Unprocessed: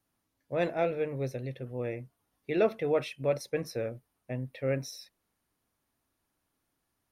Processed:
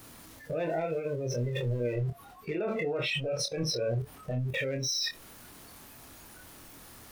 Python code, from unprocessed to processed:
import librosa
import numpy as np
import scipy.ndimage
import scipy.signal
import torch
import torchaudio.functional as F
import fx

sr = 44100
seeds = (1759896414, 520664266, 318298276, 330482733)

y = x + 0.5 * 10.0 ** (-30.0 / 20.0) * np.sign(x)
y = fx.noise_reduce_blind(y, sr, reduce_db=20)
y = fx.lowpass(y, sr, hz=4000.0, slope=6, at=(1.93, 4.39))
y = fx.level_steps(y, sr, step_db=20)
y = np.clip(y, -10.0 ** (-34.0 / 20.0), 10.0 ** (-34.0 / 20.0))
y = fx.doubler(y, sr, ms=25.0, db=-5)
y = F.gain(torch.from_numpy(y), 8.0).numpy()